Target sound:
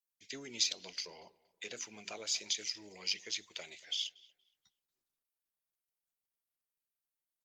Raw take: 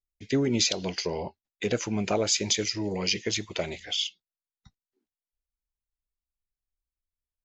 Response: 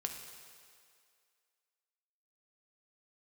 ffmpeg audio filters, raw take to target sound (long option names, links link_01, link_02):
-filter_complex "[0:a]asettb=1/sr,asplit=3[link_01][link_02][link_03];[link_01]atrim=end=1.044[link_04];[link_02]atrim=start=1.04:end=2.52,asetpts=PTS-STARTPTS,afade=type=in:duration=0.004:curve=qsin,afade=type=out:start_time=1.476:duration=0.004:curve=qsin,bandreject=frequency=50:width_type=h:width=6,bandreject=frequency=100:width_type=h:width=6,bandreject=frequency=150:width_type=h:width=6,bandreject=frequency=200:width_type=h:width=6,bandreject=frequency=250:width_type=h:width=6,bandreject=frequency=300:width_type=h:width=6,bandreject=frequency=350:width_type=h:width=6,bandreject=frequency=400:width_type=h:width=6[link_05];[link_03]atrim=start=2.516[link_06];[link_04][link_05]acrossfade=duration=0.004:curve1=hsin:curve2=qsin[link_07];[link_07][link_06]acrossfade=duration=0.004:curve1=qsin:curve2=hsin,acrossover=split=5900[link_08][link_09];[link_09]acompressor=threshold=-46dB:ratio=4:attack=1:release=60[link_10];[link_08][link_10]amix=inputs=2:normalize=0,aderivative,acrossover=split=360[link_11][link_12];[link_11]acontrast=22[link_13];[link_12]aphaser=in_gain=1:out_gain=1:delay=3:decay=0.28:speed=1.2:type=sinusoidal[link_14];[link_13][link_14]amix=inputs=2:normalize=0,asplit=2[link_15][link_16];[link_16]adelay=235,lowpass=frequency=2400:poles=1,volume=-20dB,asplit=2[link_17][link_18];[link_18]adelay=235,lowpass=frequency=2400:poles=1,volume=0.34,asplit=2[link_19][link_20];[link_20]adelay=235,lowpass=frequency=2400:poles=1,volume=0.34[link_21];[link_15][link_17][link_19][link_21]amix=inputs=4:normalize=0" -ar 48000 -c:a libopus -b:a 48k